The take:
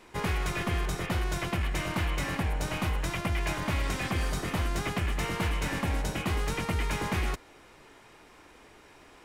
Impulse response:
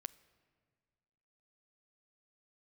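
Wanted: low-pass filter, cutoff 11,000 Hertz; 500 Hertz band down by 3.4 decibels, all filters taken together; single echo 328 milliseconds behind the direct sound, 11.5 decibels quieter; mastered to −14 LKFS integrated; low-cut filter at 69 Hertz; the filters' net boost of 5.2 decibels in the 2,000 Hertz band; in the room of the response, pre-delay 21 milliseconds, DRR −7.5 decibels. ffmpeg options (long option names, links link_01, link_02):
-filter_complex "[0:a]highpass=69,lowpass=11000,equalizer=frequency=500:width_type=o:gain=-5,equalizer=frequency=2000:width_type=o:gain=6.5,aecho=1:1:328:0.266,asplit=2[link_01][link_02];[1:a]atrim=start_sample=2205,adelay=21[link_03];[link_02][link_03]afir=irnorm=-1:irlink=0,volume=11.5dB[link_04];[link_01][link_04]amix=inputs=2:normalize=0,volume=8dB"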